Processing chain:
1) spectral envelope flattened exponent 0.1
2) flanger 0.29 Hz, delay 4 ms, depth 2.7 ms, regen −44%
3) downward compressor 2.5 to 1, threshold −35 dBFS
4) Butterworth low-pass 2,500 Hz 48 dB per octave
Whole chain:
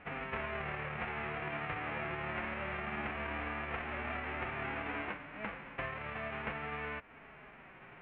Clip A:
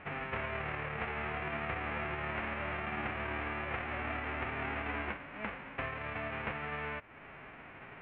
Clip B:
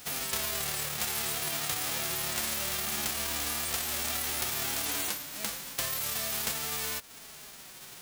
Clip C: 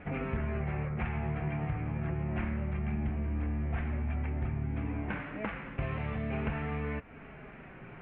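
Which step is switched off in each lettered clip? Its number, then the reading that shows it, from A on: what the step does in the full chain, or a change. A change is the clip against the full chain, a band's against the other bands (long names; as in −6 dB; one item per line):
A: 2, change in integrated loudness +1.5 LU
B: 4, 4 kHz band +18.5 dB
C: 1, 125 Hz band +17.0 dB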